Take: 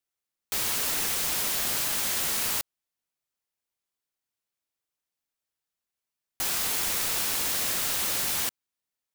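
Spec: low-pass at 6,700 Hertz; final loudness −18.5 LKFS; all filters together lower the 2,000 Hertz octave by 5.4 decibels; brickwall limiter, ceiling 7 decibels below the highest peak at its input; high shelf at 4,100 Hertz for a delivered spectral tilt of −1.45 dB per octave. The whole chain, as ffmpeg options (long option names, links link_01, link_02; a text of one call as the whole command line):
ffmpeg -i in.wav -af "lowpass=6700,equalizer=frequency=2000:width_type=o:gain=-8,highshelf=frequency=4100:gain=4,volume=14.5dB,alimiter=limit=-11dB:level=0:latency=1" out.wav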